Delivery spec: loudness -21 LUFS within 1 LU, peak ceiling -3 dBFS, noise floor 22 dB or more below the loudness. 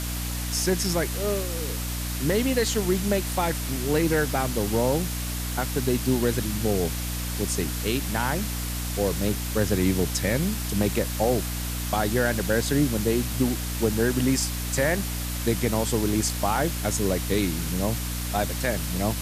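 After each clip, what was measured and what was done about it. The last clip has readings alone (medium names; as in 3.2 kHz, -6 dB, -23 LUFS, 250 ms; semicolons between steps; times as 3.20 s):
hum 60 Hz; highest harmonic 300 Hz; hum level -29 dBFS; noise floor -30 dBFS; noise floor target -48 dBFS; loudness -25.5 LUFS; peak level -10.0 dBFS; loudness target -21.0 LUFS
-> hum notches 60/120/180/240/300 Hz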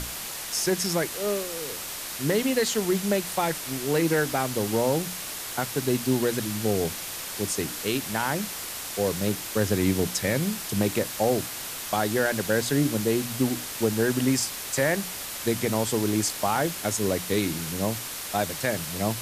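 hum not found; noise floor -35 dBFS; noise floor target -49 dBFS
-> noise reduction 14 dB, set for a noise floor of -35 dBFS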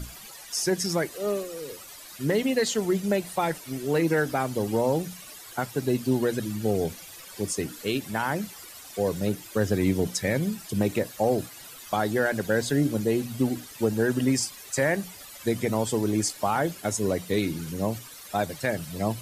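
noise floor -45 dBFS; noise floor target -49 dBFS
-> noise reduction 6 dB, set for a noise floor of -45 dBFS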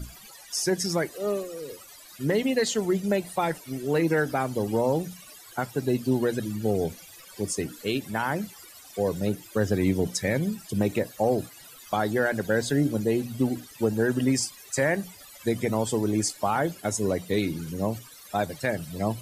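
noise floor -48 dBFS; noise floor target -49 dBFS
-> noise reduction 6 dB, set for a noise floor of -48 dBFS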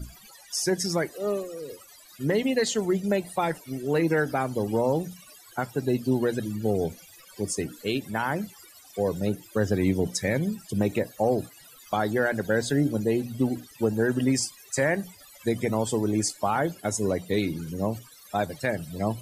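noise floor -51 dBFS; loudness -27.5 LUFS; peak level -11.5 dBFS; loudness target -21.0 LUFS
-> trim +6.5 dB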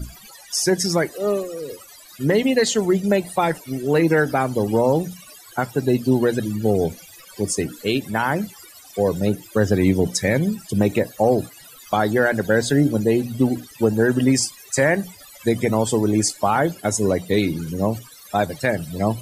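loudness -21.0 LUFS; peak level -5.0 dBFS; noise floor -45 dBFS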